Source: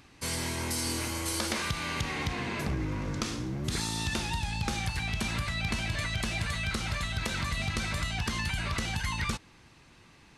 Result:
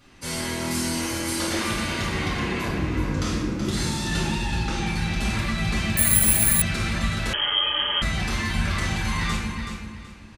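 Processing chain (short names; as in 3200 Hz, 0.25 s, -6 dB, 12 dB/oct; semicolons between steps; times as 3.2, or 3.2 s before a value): 4.17–4.88 air absorption 52 m; feedback echo 0.376 s, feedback 26%, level -8 dB; reverb RT60 1.3 s, pre-delay 4 ms, DRR -7.5 dB; 5.97–6.62 careless resampling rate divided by 4×, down filtered, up zero stuff; 7.33–8.02 inverted band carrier 3200 Hz; gain -5.5 dB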